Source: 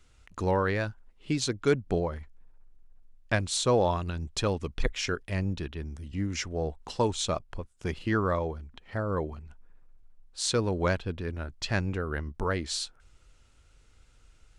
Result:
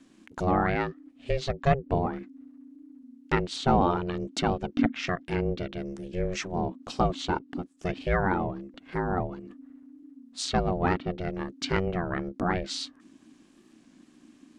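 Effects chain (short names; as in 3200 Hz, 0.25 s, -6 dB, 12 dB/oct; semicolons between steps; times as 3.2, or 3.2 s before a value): treble ducked by the level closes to 2900 Hz, closed at -25.5 dBFS; ring modulator 270 Hz; record warp 33 1/3 rpm, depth 100 cents; gain +4.5 dB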